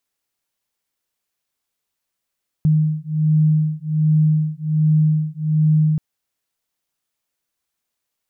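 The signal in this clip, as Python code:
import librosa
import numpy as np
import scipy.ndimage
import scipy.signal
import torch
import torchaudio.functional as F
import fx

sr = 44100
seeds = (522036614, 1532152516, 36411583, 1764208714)

y = fx.two_tone_beats(sr, length_s=3.33, hz=154.0, beat_hz=1.3, level_db=-17.0)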